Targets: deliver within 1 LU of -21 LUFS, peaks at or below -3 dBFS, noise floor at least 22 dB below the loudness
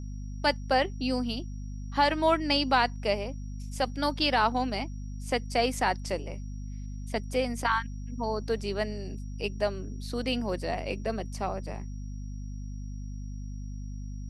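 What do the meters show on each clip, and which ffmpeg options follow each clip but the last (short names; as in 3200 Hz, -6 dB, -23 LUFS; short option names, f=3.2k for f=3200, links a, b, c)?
hum 50 Hz; harmonics up to 250 Hz; hum level -35 dBFS; steady tone 5700 Hz; tone level -60 dBFS; loudness -30.0 LUFS; peak -10.5 dBFS; loudness target -21.0 LUFS
-> -af "bandreject=f=50:t=h:w=6,bandreject=f=100:t=h:w=6,bandreject=f=150:t=h:w=6,bandreject=f=200:t=h:w=6,bandreject=f=250:t=h:w=6"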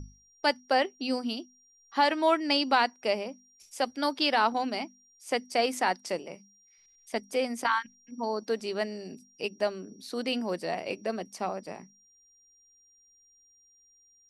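hum none; steady tone 5700 Hz; tone level -60 dBFS
-> -af "bandreject=f=5.7k:w=30"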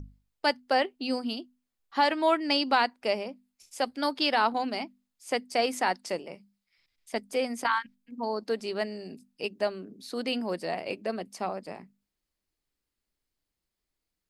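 steady tone none; loudness -29.5 LUFS; peak -10.5 dBFS; loudness target -21.0 LUFS
-> -af "volume=8.5dB,alimiter=limit=-3dB:level=0:latency=1"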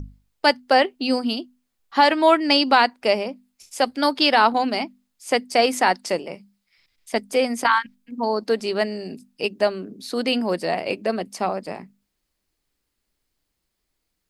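loudness -21.0 LUFS; peak -3.0 dBFS; noise floor -77 dBFS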